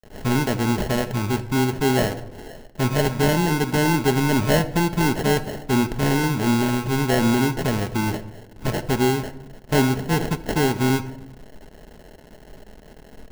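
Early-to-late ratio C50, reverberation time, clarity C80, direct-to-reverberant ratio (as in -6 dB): 14.5 dB, 0.85 s, 17.0 dB, 7.5 dB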